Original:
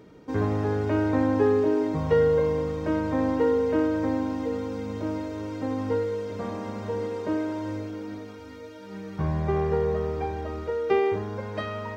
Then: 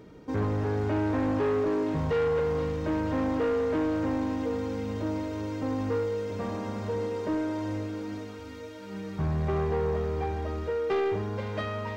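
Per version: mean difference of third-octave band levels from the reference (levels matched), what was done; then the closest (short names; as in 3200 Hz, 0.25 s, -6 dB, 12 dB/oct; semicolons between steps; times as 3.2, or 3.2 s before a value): 2.5 dB: low shelf 91 Hz +6 dB; soft clip -23 dBFS, distortion -11 dB; on a send: thin delay 0.48 s, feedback 73%, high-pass 2700 Hz, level -5 dB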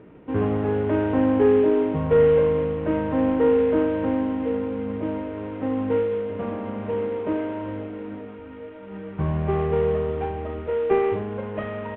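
4.0 dB: CVSD 16 kbps; high shelf 2000 Hz -11 dB; doubler 34 ms -9 dB; gain +3.5 dB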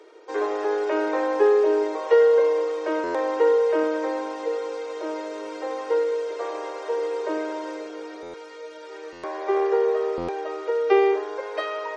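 7.5 dB: steep high-pass 330 Hz 96 dB/oct; stuck buffer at 3.03/8.22/9.12/10.17, samples 512, times 9; gain +5 dB; MP3 40 kbps 48000 Hz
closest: first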